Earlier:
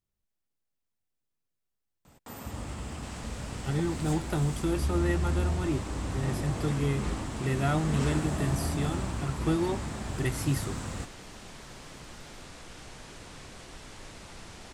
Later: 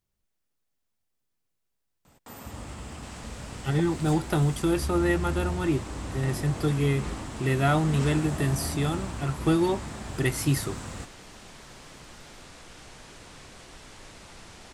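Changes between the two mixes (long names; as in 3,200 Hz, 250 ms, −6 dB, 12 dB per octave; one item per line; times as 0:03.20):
speech +6.5 dB
master: add low-shelf EQ 380 Hz −2.5 dB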